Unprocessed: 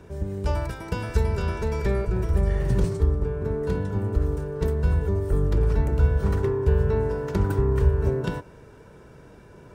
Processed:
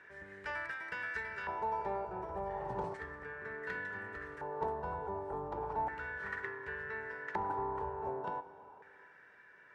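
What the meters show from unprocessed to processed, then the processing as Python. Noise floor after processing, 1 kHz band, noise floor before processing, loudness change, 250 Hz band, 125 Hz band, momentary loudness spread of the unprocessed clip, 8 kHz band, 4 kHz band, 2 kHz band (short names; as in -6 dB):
-60 dBFS, 0.0 dB, -48 dBFS, -15.0 dB, -20.0 dB, -29.0 dB, 6 LU, n/a, under -10 dB, 0.0 dB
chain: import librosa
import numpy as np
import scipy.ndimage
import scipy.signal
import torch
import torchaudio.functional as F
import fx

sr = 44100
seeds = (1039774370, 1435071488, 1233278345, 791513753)

y = fx.filter_lfo_bandpass(x, sr, shape='square', hz=0.34, low_hz=850.0, high_hz=1800.0, q=7.0)
y = fx.rider(y, sr, range_db=4, speed_s=2.0)
y = fx.rev_schroeder(y, sr, rt60_s=2.7, comb_ms=33, drr_db=14.5)
y = F.gain(torch.from_numpy(y), 8.0).numpy()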